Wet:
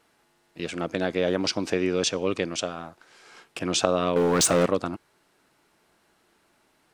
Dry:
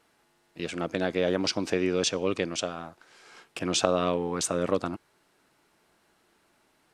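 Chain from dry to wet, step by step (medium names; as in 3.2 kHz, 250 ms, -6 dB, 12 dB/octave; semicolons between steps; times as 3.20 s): 4.16–4.66 s: waveshaping leveller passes 3; trim +1.5 dB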